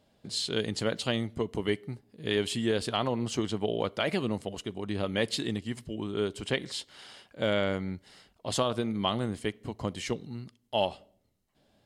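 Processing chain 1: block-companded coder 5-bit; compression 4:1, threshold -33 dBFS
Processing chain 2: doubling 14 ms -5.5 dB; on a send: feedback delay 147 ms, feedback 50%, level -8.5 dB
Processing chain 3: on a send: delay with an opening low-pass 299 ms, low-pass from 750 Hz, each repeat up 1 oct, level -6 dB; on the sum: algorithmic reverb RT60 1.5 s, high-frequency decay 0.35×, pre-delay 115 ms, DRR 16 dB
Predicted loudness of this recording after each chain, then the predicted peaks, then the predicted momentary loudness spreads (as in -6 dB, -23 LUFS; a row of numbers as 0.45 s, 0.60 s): -38.0 LUFS, -30.0 LUFS, -30.5 LUFS; -18.5 dBFS, -12.5 dBFS, -12.5 dBFS; 7 LU, 10 LU, 7 LU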